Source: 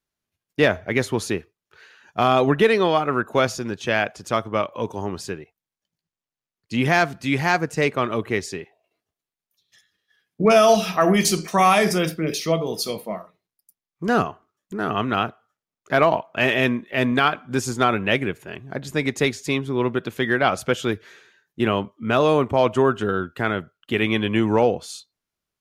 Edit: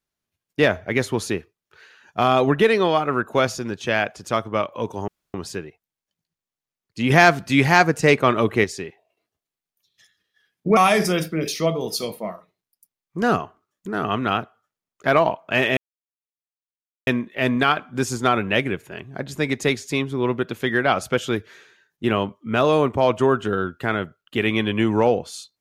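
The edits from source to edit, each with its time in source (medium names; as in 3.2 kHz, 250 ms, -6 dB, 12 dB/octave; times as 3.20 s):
5.08 s: insert room tone 0.26 s
6.84–8.38 s: gain +5 dB
10.51–11.63 s: delete
16.63 s: insert silence 1.30 s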